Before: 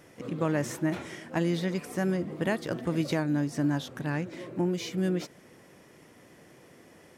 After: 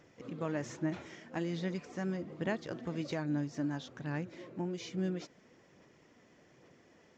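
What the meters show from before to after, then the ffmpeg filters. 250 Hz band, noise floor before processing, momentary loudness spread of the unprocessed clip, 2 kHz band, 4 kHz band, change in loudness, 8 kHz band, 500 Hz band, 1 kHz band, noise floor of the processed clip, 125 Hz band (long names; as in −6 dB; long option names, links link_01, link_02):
−7.5 dB, −56 dBFS, 6 LU, −7.5 dB, −8.0 dB, −7.5 dB, −10.0 dB, −8.0 dB, −7.5 dB, −64 dBFS, −8.0 dB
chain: -af "aresample=16000,aresample=44100,aphaser=in_gain=1:out_gain=1:delay=4.6:decay=0.27:speed=1.2:type=sinusoidal,volume=-8.5dB"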